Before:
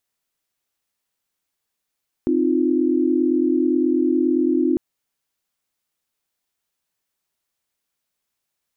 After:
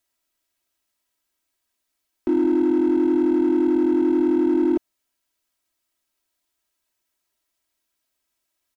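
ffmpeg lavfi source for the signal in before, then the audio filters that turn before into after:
-f lavfi -i "aevalsrc='0.1*(sin(2*PI*261.63*t)+sin(2*PI*311.13*t)+sin(2*PI*349.23*t))':duration=2.5:sample_rate=44100"
-filter_complex "[0:a]acrossover=split=350[link_01][link_02];[link_01]asoftclip=type=hard:threshold=-30dB[link_03];[link_03][link_02]amix=inputs=2:normalize=0,aecho=1:1:3.1:0.75"

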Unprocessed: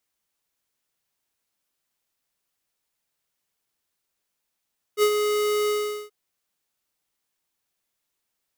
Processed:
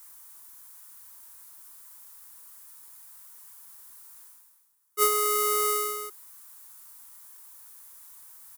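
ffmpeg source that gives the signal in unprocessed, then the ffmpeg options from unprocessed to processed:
-f lavfi -i "aevalsrc='0.141*(2*lt(mod(419*t,1),0.5)-1)':duration=1.129:sample_rate=44100,afade=type=in:duration=0.057,afade=type=out:start_time=0.057:duration=0.072:silence=0.501,afade=type=out:start_time=0.72:duration=0.409"
-af "firequalizer=gain_entry='entry(110,0);entry(190,-24);entry(360,-2);entry(560,-20);entry(940,6);entry(2600,-7);entry(9700,11)':delay=0.05:min_phase=1,areverse,acompressor=mode=upward:threshold=-31dB:ratio=2.5,areverse"

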